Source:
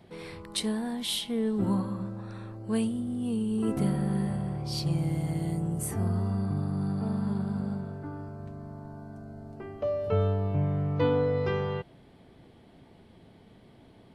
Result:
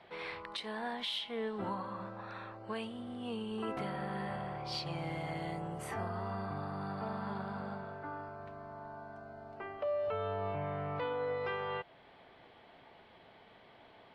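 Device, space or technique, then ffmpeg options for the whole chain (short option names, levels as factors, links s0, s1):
DJ mixer with the lows and highs turned down: -filter_complex "[0:a]acrossover=split=570 3900:gain=0.112 1 0.0631[s0][s1][s2];[s0][s1][s2]amix=inputs=3:normalize=0,alimiter=level_in=2.99:limit=0.0631:level=0:latency=1:release=299,volume=0.335,volume=1.88"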